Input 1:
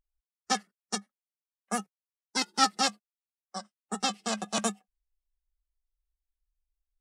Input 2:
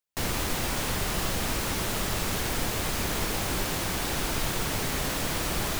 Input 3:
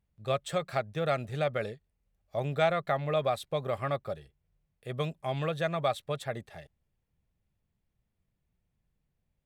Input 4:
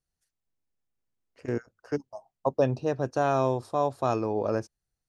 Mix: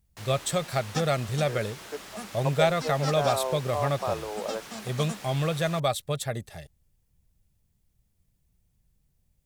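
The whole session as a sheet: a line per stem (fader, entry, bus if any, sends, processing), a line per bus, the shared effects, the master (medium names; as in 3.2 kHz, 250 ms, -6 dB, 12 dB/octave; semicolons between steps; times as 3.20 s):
-1.0 dB, 0.45 s, no send, auto duck -10 dB, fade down 1.75 s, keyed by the third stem
-13.0 dB, 0.00 s, no send, frequency weighting A
+1.5 dB, 0.00 s, no send, tone controls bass -1 dB, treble +13 dB
-4.0 dB, 0.00 s, no send, high-pass 450 Hz 24 dB/octave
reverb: none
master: bass shelf 180 Hz +10.5 dB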